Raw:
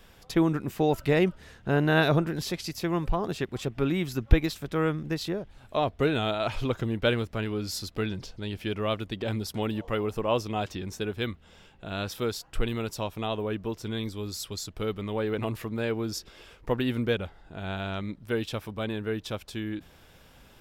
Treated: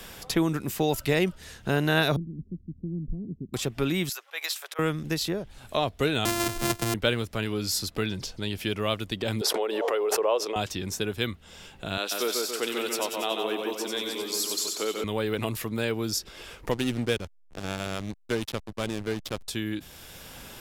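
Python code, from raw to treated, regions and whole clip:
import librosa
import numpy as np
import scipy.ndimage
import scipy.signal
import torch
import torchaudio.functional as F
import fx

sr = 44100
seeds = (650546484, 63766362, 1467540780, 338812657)

y = fx.chain(x, sr, fx.cheby2_lowpass(hz=1400.0, order=4, stop_db=80),
    fx.peak_eq(hz=120.0, db=-6.5, octaves=1.0), at=(2.16, 3.54))
y = fx.chain(y, sr, fx.bessel_highpass(hz=960.0, order=8),
    fx.auto_swell(attack_ms=120.0), at=(4.09, 4.79))
y = fx.chain(y, sr, fx.sample_sort(block=128),
    fx.band_squash(depth_pct=40), at=(6.25, 6.94))
y = fx.chain(y, sr, fx.cheby1_highpass(hz=420.0, order=4),
    fx.tilt_eq(slope=-4.0),
    fx.pre_swell(db_per_s=26.0), at=(9.41, 10.56))
y = fx.chain(y, sr, fx.highpass(hz=300.0, slope=24),
    fx.echo_split(split_hz=2700.0, low_ms=141, high_ms=93, feedback_pct=52, wet_db=-3.5), at=(11.97, 15.04))
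y = fx.chain(y, sr, fx.lowpass(hz=8600.0, slope=12),
    fx.backlash(play_db=-30.0), at=(16.71, 19.48))
y = fx.peak_eq(y, sr, hz=11000.0, db=11.0, octaves=2.4)
y = fx.band_squash(y, sr, depth_pct=40)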